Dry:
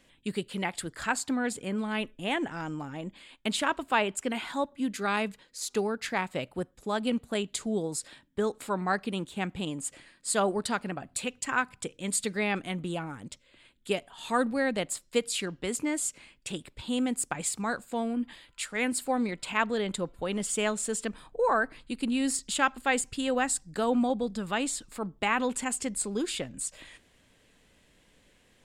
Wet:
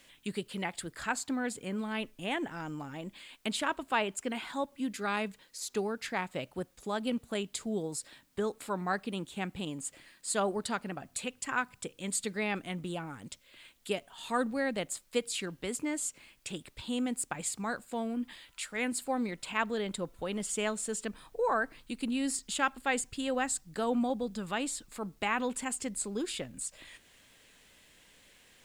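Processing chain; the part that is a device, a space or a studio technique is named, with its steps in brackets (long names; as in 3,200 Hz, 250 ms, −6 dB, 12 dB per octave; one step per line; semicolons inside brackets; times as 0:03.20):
noise-reduction cassette on a plain deck (one half of a high-frequency compander encoder only; tape wow and flutter 25 cents; white noise bed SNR 37 dB)
level −4 dB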